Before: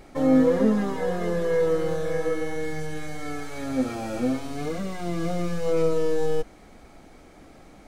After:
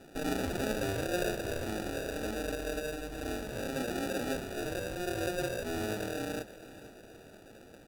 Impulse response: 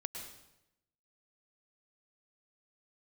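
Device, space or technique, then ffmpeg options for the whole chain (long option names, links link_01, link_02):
crushed at another speed: -af "highpass=frequency=390:width=0.5412,highpass=frequency=390:width=1.3066,afftfilt=real='re*lt(hypot(re,im),0.282)':imag='im*lt(hypot(re,im),0.282)':win_size=1024:overlap=0.75,asetrate=55125,aresample=44100,acrusher=samples=33:mix=1:aa=0.000001,asetrate=35280,aresample=44100,aecho=1:1:475|950|1425|1900:0.158|0.0682|0.0293|0.0126"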